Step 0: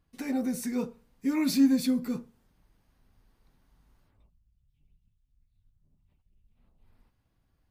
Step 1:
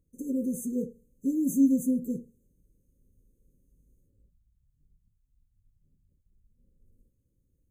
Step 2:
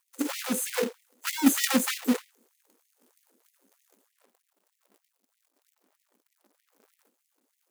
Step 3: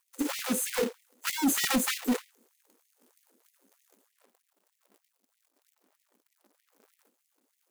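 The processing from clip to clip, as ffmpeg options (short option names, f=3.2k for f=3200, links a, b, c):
-af "afftfilt=real='re*(1-between(b*sr/4096,580,6100))':imag='im*(1-between(b*sr/4096,580,6100))':win_size=4096:overlap=0.75"
-af "acrusher=bits=2:mode=log:mix=0:aa=0.000001,afftfilt=real='re*gte(b*sr/1024,200*pow(1900/200,0.5+0.5*sin(2*PI*3.2*pts/sr)))':imag='im*gte(b*sr/1024,200*pow(1900/200,0.5+0.5*sin(2*PI*3.2*pts/sr)))':win_size=1024:overlap=0.75,volume=8.5dB"
-af "volume=20.5dB,asoftclip=hard,volume=-20.5dB"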